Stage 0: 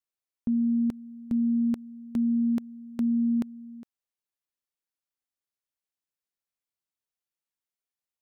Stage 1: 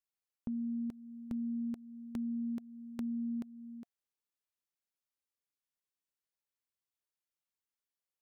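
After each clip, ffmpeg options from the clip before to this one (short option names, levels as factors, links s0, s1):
-af "bandreject=f=700:w=12,acompressor=threshold=0.0126:ratio=2,volume=0.631"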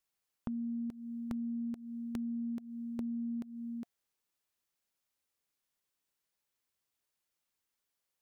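-af "aeval=exprs='0.0335*(abs(mod(val(0)/0.0335+3,4)-2)-1)':c=same,acompressor=threshold=0.00708:ratio=6,volume=2.24"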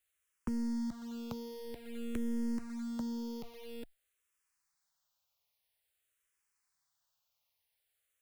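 -filter_complex "[0:a]acrossover=split=150|460|1000[s0][s1][s2][s3];[s1]acrusher=bits=6:dc=4:mix=0:aa=0.000001[s4];[s0][s4][s2][s3]amix=inputs=4:normalize=0,asplit=2[s5][s6];[s6]afreqshift=-0.5[s7];[s5][s7]amix=inputs=2:normalize=1,volume=2.11"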